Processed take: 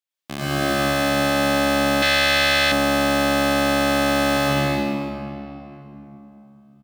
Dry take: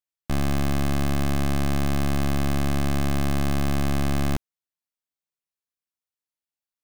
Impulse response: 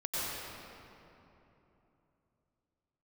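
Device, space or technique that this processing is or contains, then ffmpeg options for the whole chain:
stadium PA: -filter_complex "[0:a]highpass=190,equalizer=f=3.2k:t=o:w=1.2:g=6,aecho=1:1:160.3|209.9|279.9:0.631|0.355|0.447[a];[1:a]atrim=start_sample=2205[b];[a][b]afir=irnorm=-1:irlink=0,asettb=1/sr,asplit=3[c][d][e];[c]atrim=end=2.024[f];[d]atrim=start=2.02:end=2.72,asetpts=PTS-STARTPTS,afade=t=in:d=0.004:c=qsin,afade=t=out:st=0.696:d=0.004:c=qsin,equalizer=f=250:t=o:w=1:g=-12,equalizer=f=1k:t=o:w=1:g=-4,equalizer=f=2k:t=o:w=1:g=8,equalizer=f=4k:t=o:w=1:g=8[g];[e]atrim=start=2.716[h];[f][g]acrossfade=d=0.004:c1=hsin:c2=qsin[i];[i][h]acrossfade=d=0.004:c1=qsin:c2=hsin,volume=1dB"

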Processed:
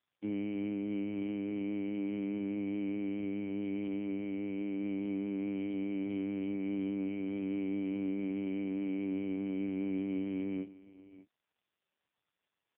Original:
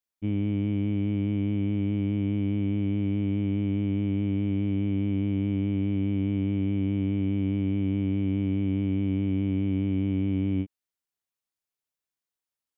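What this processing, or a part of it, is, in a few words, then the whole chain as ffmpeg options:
satellite phone: -af "highpass=330,lowpass=3.2k,aecho=1:1:599:0.133" -ar 8000 -c:a libopencore_amrnb -b:a 5150

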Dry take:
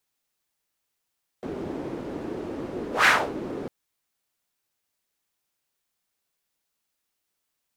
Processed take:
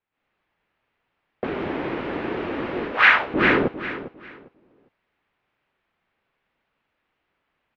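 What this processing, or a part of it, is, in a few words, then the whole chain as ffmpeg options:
action camera in a waterproof case: -filter_complex "[0:a]asettb=1/sr,asplit=3[a][b][c];[a]atrim=end=1.444[d];[b]atrim=start=1.44:end=3.34,asetpts=PTS-STARTPTS,afade=t=in:d=0.004:c=qsin,afade=t=out:st=1.896:d=0.004:c=qsin,tiltshelf=f=1.4k:g=-10[e];[c]atrim=start=3.336[f];[d][e]acrossfade=d=0.004:c1=hsin:c2=qsin[g];[g][f]acrossfade=d=0.004:c1=qsin:c2=hsin,lowpass=f=2.6k:w=0.5412,lowpass=f=2.6k:w=1.3066,aecho=1:1:402|804|1206:0.2|0.0459|0.0106,dynaudnorm=f=110:g=3:m=14dB,volume=-1dB" -ar 48000 -c:a aac -b:a 64k

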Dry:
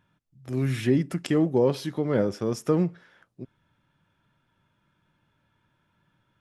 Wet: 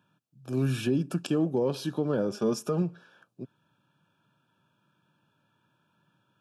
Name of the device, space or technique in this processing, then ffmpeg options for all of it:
PA system with an anti-feedback notch: -filter_complex "[0:a]asettb=1/sr,asplit=3[a][b][c];[a]atrim=end=2.314[d];[b]atrim=start=2.31:end=2.82,asetpts=PTS-STARTPTS,afade=t=in:d=0.004:c=qsin,afade=t=out:st=0.506:d=0.004:c=qsin,aecho=1:1:4.9:0.58,atrim=end_sample=22491[e];[c]atrim=start=2.816[f];[d][e]acrossfade=d=0.004:c1=hsin:c2=qsin[g];[g][f]acrossfade=d=0.004:c1=qsin:c2=hsin,highpass=f=120:w=0.5412,highpass=f=120:w=1.3066,asuperstop=centerf=2000:order=12:qfactor=3.6,alimiter=limit=-17.5dB:level=0:latency=1:release=173"

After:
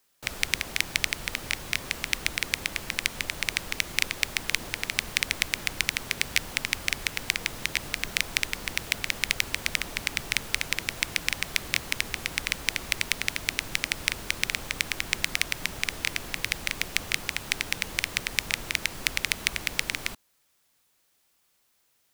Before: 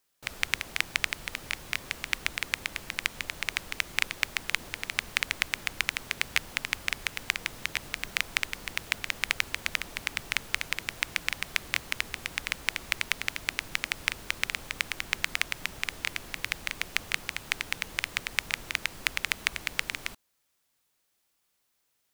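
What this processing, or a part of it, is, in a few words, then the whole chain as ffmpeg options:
one-band saturation: -filter_complex "[0:a]acrossover=split=240|2900[a][b][c];[b]asoftclip=type=tanh:threshold=-21.5dB[d];[a][d][c]amix=inputs=3:normalize=0,volume=6dB"

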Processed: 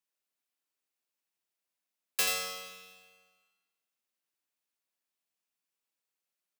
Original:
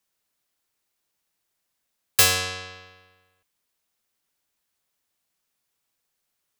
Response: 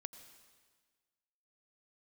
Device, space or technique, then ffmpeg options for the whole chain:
PA in a hall: -filter_complex "[0:a]highpass=f=170:w=0.5412,highpass=f=170:w=1.3066,equalizer=f=2.6k:t=o:w=0.24:g=4,aecho=1:1:85:0.501[a];[1:a]atrim=start_sample=2205[b];[a][b]afir=irnorm=-1:irlink=0,volume=-8dB"

